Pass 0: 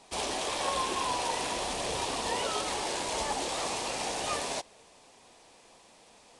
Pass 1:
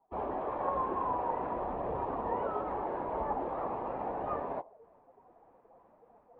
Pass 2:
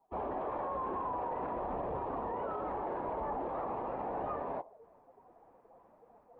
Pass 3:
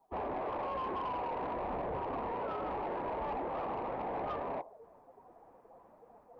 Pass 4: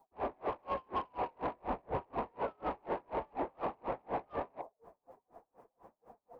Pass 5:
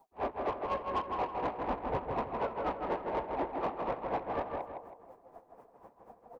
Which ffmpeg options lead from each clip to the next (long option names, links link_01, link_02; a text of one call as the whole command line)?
ffmpeg -i in.wav -af "afftdn=noise_reduction=20:noise_floor=-45,lowpass=frequency=1300:width=0.5412,lowpass=frequency=1300:width=1.3066,areverse,acompressor=mode=upward:threshold=-46dB:ratio=2.5,areverse" out.wav
ffmpeg -i in.wav -af "alimiter=level_in=5dB:limit=-24dB:level=0:latency=1:release=21,volume=-5dB" out.wav
ffmpeg -i in.wav -af "asoftclip=type=tanh:threshold=-34dB,volume=2.5dB" out.wav
ffmpeg -i in.wav -af "aeval=exprs='val(0)*pow(10,-37*(0.5-0.5*cos(2*PI*4.1*n/s))/20)':channel_layout=same,volume=5dB" out.wav
ffmpeg -i in.wav -filter_complex "[0:a]aeval=exprs='0.0473*(cos(1*acos(clip(val(0)/0.0473,-1,1)))-cos(1*PI/2))+0.0015*(cos(5*acos(clip(val(0)/0.0473,-1,1)))-cos(5*PI/2))':channel_layout=same,asplit=2[link_01][link_02];[link_02]adelay=161,lowpass=frequency=3300:poles=1,volume=-3.5dB,asplit=2[link_03][link_04];[link_04]adelay=161,lowpass=frequency=3300:poles=1,volume=0.39,asplit=2[link_05][link_06];[link_06]adelay=161,lowpass=frequency=3300:poles=1,volume=0.39,asplit=2[link_07][link_08];[link_08]adelay=161,lowpass=frequency=3300:poles=1,volume=0.39,asplit=2[link_09][link_10];[link_10]adelay=161,lowpass=frequency=3300:poles=1,volume=0.39[link_11];[link_03][link_05][link_07][link_09][link_11]amix=inputs=5:normalize=0[link_12];[link_01][link_12]amix=inputs=2:normalize=0,volume=2dB" out.wav